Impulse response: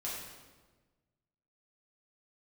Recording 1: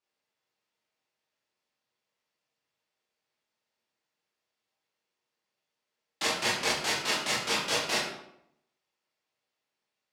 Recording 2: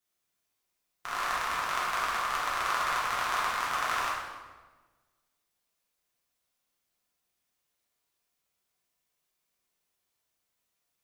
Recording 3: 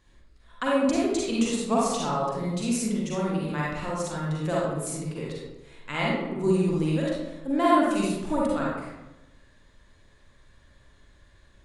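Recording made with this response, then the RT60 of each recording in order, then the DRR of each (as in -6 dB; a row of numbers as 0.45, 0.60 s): 2; 0.75, 1.3, 1.0 s; -8.0, -7.0, -5.5 dB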